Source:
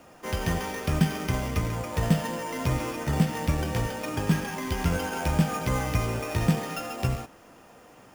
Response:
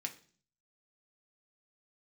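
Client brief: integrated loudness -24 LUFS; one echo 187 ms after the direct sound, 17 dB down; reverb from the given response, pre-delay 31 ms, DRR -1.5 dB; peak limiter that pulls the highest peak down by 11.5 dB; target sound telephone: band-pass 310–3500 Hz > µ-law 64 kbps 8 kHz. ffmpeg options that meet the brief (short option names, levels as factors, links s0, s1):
-filter_complex "[0:a]alimiter=limit=0.0891:level=0:latency=1,aecho=1:1:187:0.141,asplit=2[s0][s1];[1:a]atrim=start_sample=2205,adelay=31[s2];[s1][s2]afir=irnorm=-1:irlink=0,volume=1.26[s3];[s0][s3]amix=inputs=2:normalize=0,highpass=310,lowpass=3500,volume=2.37" -ar 8000 -c:a pcm_mulaw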